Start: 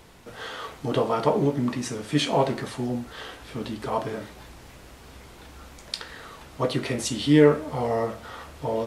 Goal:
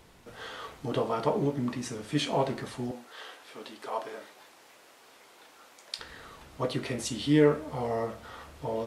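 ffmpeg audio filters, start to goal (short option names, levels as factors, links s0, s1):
-filter_complex "[0:a]asettb=1/sr,asplit=3[s0][s1][s2];[s0]atrim=end=2.914[s3];[s1]atrim=start=2.91:end=5.99,asetpts=PTS-STARTPTS,afade=t=in:d=0.004:c=qsin,afade=t=out:st=3.076:d=0.004:c=qsin,highpass=460[s4];[s2]atrim=start=5.986[s5];[s3][s4]acrossfade=d=0.004:c1=hsin:c2=qsin[s6];[s6][s5]acrossfade=d=0.004:c1=qsin:c2=hsin,volume=0.531"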